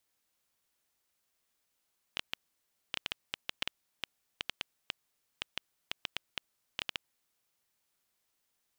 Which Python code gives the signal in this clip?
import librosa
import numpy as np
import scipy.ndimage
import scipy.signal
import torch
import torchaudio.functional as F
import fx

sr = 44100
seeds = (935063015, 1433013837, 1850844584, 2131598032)

y = fx.geiger_clicks(sr, seeds[0], length_s=5.15, per_s=5.3, level_db=-15.0)